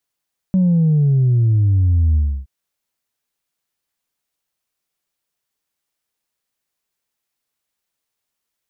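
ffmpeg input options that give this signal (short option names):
-f lavfi -i "aevalsrc='0.266*clip((1.92-t)/0.3,0,1)*tanh(1.06*sin(2*PI*190*1.92/log(65/190)*(exp(log(65/190)*t/1.92)-1)))/tanh(1.06)':d=1.92:s=44100"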